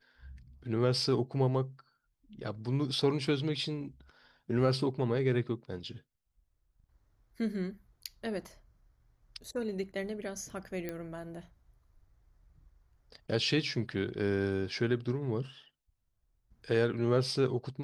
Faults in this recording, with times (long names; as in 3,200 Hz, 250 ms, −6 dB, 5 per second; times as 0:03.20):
0:10.89: click −23 dBFS